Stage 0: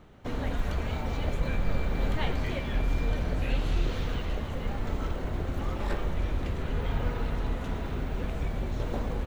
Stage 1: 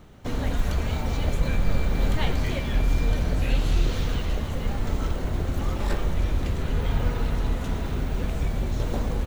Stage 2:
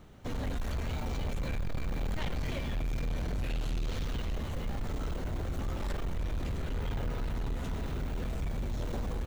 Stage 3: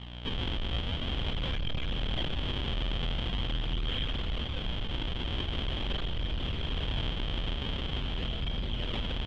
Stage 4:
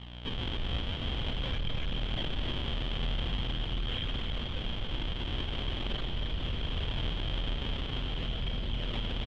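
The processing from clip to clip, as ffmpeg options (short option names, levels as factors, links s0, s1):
-af "bass=f=250:g=3,treble=f=4000:g=8,volume=1.33"
-af "asoftclip=type=tanh:threshold=0.0631,volume=0.596"
-af "aeval=exprs='val(0)+0.00794*(sin(2*PI*60*n/s)+sin(2*PI*2*60*n/s)/2+sin(2*PI*3*60*n/s)/3+sin(2*PI*4*60*n/s)/4+sin(2*PI*5*60*n/s)/5)':c=same,acrusher=samples=41:mix=1:aa=0.000001:lfo=1:lforange=65.6:lforate=0.44,lowpass=f=3200:t=q:w=14"
-af "aecho=1:1:275:0.473,volume=0.794"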